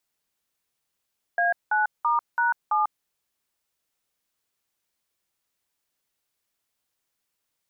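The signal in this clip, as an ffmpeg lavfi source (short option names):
-f lavfi -i "aevalsrc='0.0794*clip(min(mod(t,0.333),0.145-mod(t,0.333))/0.002,0,1)*(eq(floor(t/0.333),0)*(sin(2*PI*697*mod(t,0.333))+sin(2*PI*1633*mod(t,0.333)))+eq(floor(t/0.333),1)*(sin(2*PI*852*mod(t,0.333))+sin(2*PI*1477*mod(t,0.333)))+eq(floor(t/0.333),2)*(sin(2*PI*941*mod(t,0.333))+sin(2*PI*1209*mod(t,0.333)))+eq(floor(t/0.333),3)*(sin(2*PI*941*mod(t,0.333))+sin(2*PI*1477*mod(t,0.333)))+eq(floor(t/0.333),4)*(sin(2*PI*852*mod(t,0.333))+sin(2*PI*1209*mod(t,0.333))))':d=1.665:s=44100"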